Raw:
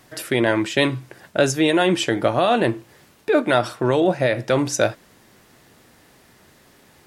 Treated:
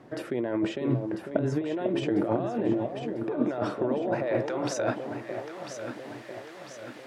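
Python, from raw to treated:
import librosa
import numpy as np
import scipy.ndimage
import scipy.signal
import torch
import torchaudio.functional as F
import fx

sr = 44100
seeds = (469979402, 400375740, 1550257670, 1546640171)

y = fx.over_compress(x, sr, threshold_db=-26.0, ratio=-1.0)
y = fx.filter_sweep_bandpass(y, sr, from_hz=330.0, to_hz=2000.0, start_s=3.43, end_s=5.77, q=0.74)
y = fx.echo_alternate(y, sr, ms=498, hz=900.0, feedback_pct=72, wet_db=-5.0)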